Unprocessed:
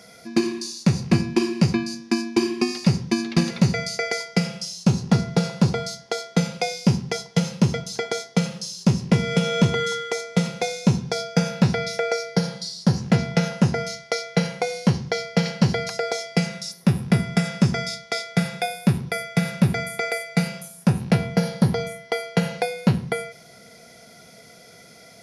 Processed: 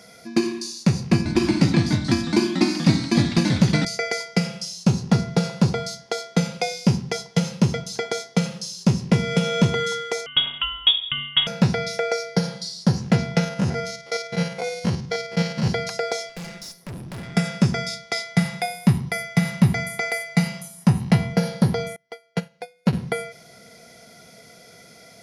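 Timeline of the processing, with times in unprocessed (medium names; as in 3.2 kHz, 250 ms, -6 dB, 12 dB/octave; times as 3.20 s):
1.16–3.85 s: ever faster or slower copies 96 ms, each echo -2 st, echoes 3
10.26–11.47 s: frequency inversion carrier 3.5 kHz
13.44–15.68 s: spectrogram pixelated in time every 50 ms
16.29–17.35 s: valve stage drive 32 dB, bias 0.65
18.12–21.33 s: comb 1 ms, depth 44%
21.96–22.93 s: upward expansion 2.5:1, over -31 dBFS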